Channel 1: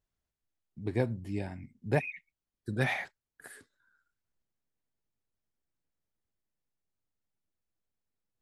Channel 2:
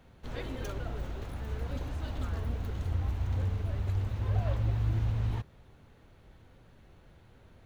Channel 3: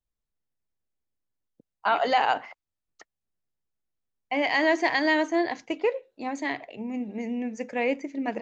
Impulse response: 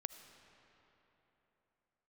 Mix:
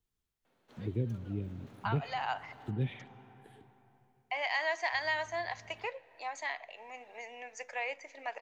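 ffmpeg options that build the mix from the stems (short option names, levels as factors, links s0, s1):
-filter_complex "[0:a]firequalizer=gain_entry='entry(450,0);entry(760,-29);entry(3200,-1);entry(4700,-23)':delay=0.05:min_phase=1,volume=0.794,asplit=3[s0][s1][s2];[s1]volume=0.562[s3];[1:a]highpass=290,acontrast=52,adelay=450,volume=0.119,asplit=3[s4][s5][s6];[s4]atrim=end=2.71,asetpts=PTS-STARTPTS,afade=t=out:st=2.706:d=0.004:c=hsin[s7];[s5]atrim=start=2.71:end=4.93,asetpts=PTS-STARTPTS,volume=0[s8];[s6]atrim=start=4.93,asetpts=PTS-STARTPTS,afade=t=in:d=0.004:c=hsin[s9];[s7][s8][s9]concat=n=3:v=0:a=1,asplit=2[s10][s11];[s11]volume=0.282[s12];[2:a]highpass=f=680:w=0.5412,highpass=f=680:w=1.3066,volume=1.19,asplit=2[s13][s14];[s14]volume=0.237[s15];[s2]apad=whole_len=371004[s16];[s13][s16]sidechaincompress=threshold=0.00631:ratio=8:attack=16:release=337[s17];[3:a]atrim=start_sample=2205[s18];[s3][s12][s15]amix=inputs=3:normalize=0[s19];[s19][s18]afir=irnorm=-1:irlink=0[s20];[s0][s10][s17][s20]amix=inputs=4:normalize=0,acrossover=split=180[s21][s22];[s22]acompressor=threshold=0.00398:ratio=1.5[s23];[s21][s23]amix=inputs=2:normalize=0"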